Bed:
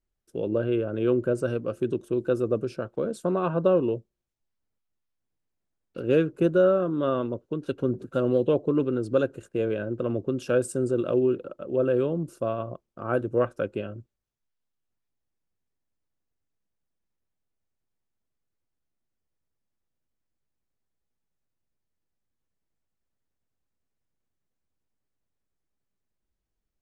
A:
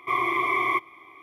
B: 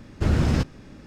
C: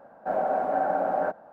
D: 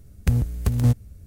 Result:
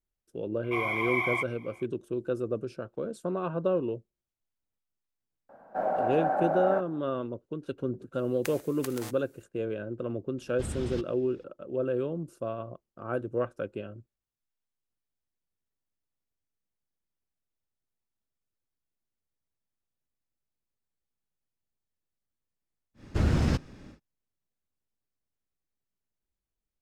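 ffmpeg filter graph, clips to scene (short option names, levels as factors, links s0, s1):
-filter_complex "[2:a]asplit=2[s0][s1];[0:a]volume=0.501[s2];[1:a]aecho=1:1:1.3:0.75[s3];[4:a]highpass=910[s4];[s0]equalizer=f=3400:t=o:w=0.62:g=8.5[s5];[s3]atrim=end=1.22,asetpts=PTS-STARTPTS,volume=0.531,afade=t=in:d=0.004:c=hsin,afade=t=out:st=1.216:d=0.004:c=hsin,adelay=640[s6];[3:a]atrim=end=1.52,asetpts=PTS-STARTPTS,volume=0.75,afade=t=in:d=0.004:c=hsin,afade=t=out:st=1.516:d=0.004:c=hsin,adelay=242109S[s7];[s4]atrim=end=1.26,asetpts=PTS-STARTPTS,volume=0.794,afade=t=in:d=0.004:c=hsin,afade=t=out:st=1.256:d=0.004:c=hsin,adelay=360738S[s8];[s5]atrim=end=1.06,asetpts=PTS-STARTPTS,volume=0.168,afade=t=in:d=0.004:c=hsin,afade=t=out:st=1.056:d=0.004:c=hsin,adelay=10380[s9];[s1]atrim=end=1.06,asetpts=PTS-STARTPTS,volume=0.631,afade=t=in:d=0.1,afade=t=out:st=0.96:d=0.1,adelay=22940[s10];[s2][s6][s7][s8][s9][s10]amix=inputs=6:normalize=0"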